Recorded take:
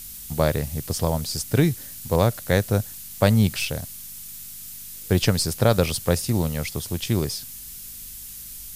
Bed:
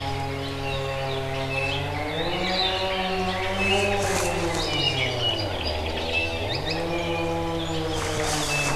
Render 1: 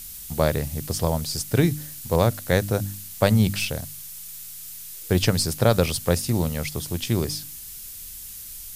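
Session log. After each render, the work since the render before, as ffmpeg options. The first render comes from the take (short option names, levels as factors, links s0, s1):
-af "bandreject=f=50:t=h:w=4,bandreject=f=100:t=h:w=4,bandreject=f=150:t=h:w=4,bandreject=f=200:t=h:w=4,bandreject=f=250:t=h:w=4,bandreject=f=300:t=h:w=4"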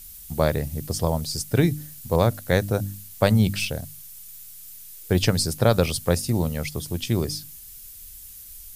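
-af "afftdn=nr=7:nf=-39"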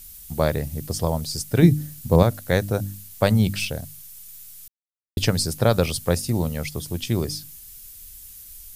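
-filter_complex "[0:a]asettb=1/sr,asplit=3[s0][s1][s2];[s0]atrim=end=1.624[s3];[s1]atrim=start=1.62:end=2.23,asetpts=PTS-STARTPTS,afade=t=in:d=0.004:c=qsin,afade=t=out:st=0.606:d=0.004:c=qsin,equalizer=f=160:w=0.43:g=8[s4];[s2]atrim=start=2.226[s5];[s3][s4]acrossfade=d=0.004:c1=hsin:c2=qsin[s6];[s6][s5]acrossfade=d=0.004:c1=qsin:c2=hsin,asplit=3[s7][s8][s9];[s7]atrim=end=4.68,asetpts=PTS-STARTPTS,afade=t=out:st=4.676:d=0.004:c=hsin[s10];[s8]atrim=start=4.68:end=5.17,asetpts=PTS-STARTPTS,volume=0[s11];[s9]atrim=start=5.17,asetpts=PTS-STARTPTS,afade=t=in:d=0.004:c=hsin[s12];[s10][s11][s12]concat=n=3:v=0:a=1"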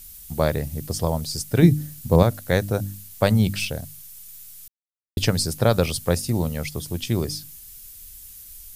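-af anull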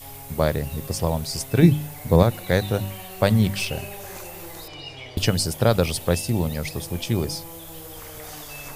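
-filter_complex "[1:a]volume=0.188[s0];[0:a][s0]amix=inputs=2:normalize=0"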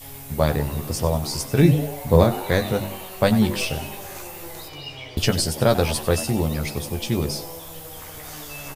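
-filter_complex "[0:a]asplit=2[s0][s1];[s1]adelay=14,volume=0.531[s2];[s0][s2]amix=inputs=2:normalize=0,asplit=7[s3][s4][s5][s6][s7][s8][s9];[s4]adelay=96,afreqshift=140,volume=0.178[s10];[s5]adelay=192,afreqshift=280,volume=0.104[s11];[s6]adelay=288,afreqshift=420,volume=0.0596[s12];[s7]adelay=384,afreqshift=560,volume=0.0347[s13];[s8]adelay=480,afreqshift=700,volume=0.0202[s14];[s9]adelay=576,afreqshift=840,volume=0.0116[s15];[s3][s10][s11][s12][s13][s14][s15]amix=inputs=7:normalize=0"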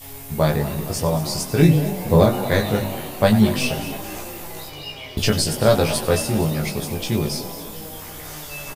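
-filter_complex "[0:a]asplit=2[s0][s1];[s1]adelay=19,volume=0.708[s2];[s0][s2]amix=inputs=2:normalize=0,asplit=7[s3][s4][s5][s6][s7][s8][s9];[s4]adelay=232,afreqshift=32,volume=0.188[s10];[s5]adelay=464,afreqshift=64,volume=0.11[s11];[s6]adelay=696,afreqshift=96,volume=0.0631[s12];[s7]adelay=928,afreqshift=128,volume=0.0367[s13];[s8]adelay=1160,afreqshift=160,volume=0.0214[s14];[s9]adelay=1392,afreqshift=192,volume=0.0123[s15];[s3][s10][s11][s12][s13][s14][s15]amix=inputs=7:normalize=0"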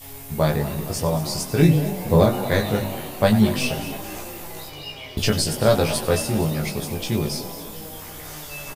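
-af "volume=0.841"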